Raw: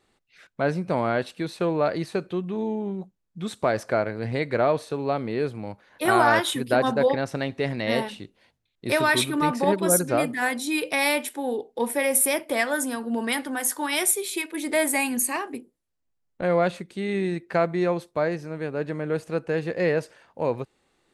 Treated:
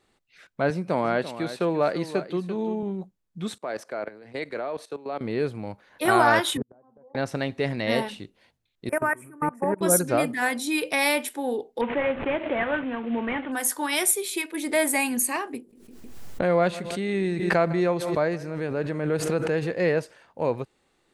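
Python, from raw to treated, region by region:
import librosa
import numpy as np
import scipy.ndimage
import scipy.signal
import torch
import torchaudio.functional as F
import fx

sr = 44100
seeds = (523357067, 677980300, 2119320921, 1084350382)

y = fx.chain(x, sr, fx.highpass(hz=140.0, slope=12),
    fx.echo_single(ms=340, db=-12.5), at=(0.7, 2.83))
y = fx.chain(y, sr, fx.highpass(hz=270.0, slope=12),
    fx.level_steps(step_db=15),
    fx.band_widen(depth_pct=40), at=(3.58, 5.21))
y = fx.chain(y, sr, fx.lowpass(hz=1100.0, slope=24),
    fx.gate_flip(shuts_db=-17.0, range_db=-38),
    fx.band_squash(depth_pct=40), at=(6.57, 7.15))
y = fx.chain(y, sr, fx.cheby1_bandstop(low_hz=1700.0, high_hz=8600.0, order=2),
    fx.level_steps(step_db=23), at=(8.89, 9.81))
y = fx.chain(y, sr, fx.cvsd(bps=16000),
    fx.pre_swell(db_per_s=93.0), at=(11.81, 13.52))
y = fx.chain(y, sr, fx.echo_feedback(ms=156, feedback_pct=40, wet_db=-21),
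    fx.pre_swell(db_per_s=45.0), at=(15.57, 19.76))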